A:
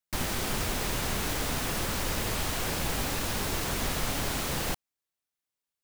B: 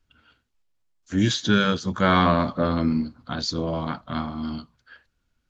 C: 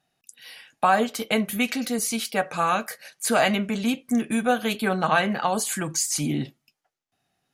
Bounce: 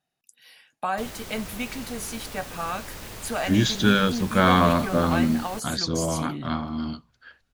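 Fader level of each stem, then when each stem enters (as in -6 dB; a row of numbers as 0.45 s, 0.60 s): -8.5 dB, +0.5 dB, -8.0 dB; 0.85 s, 2.35 s, 0.00 s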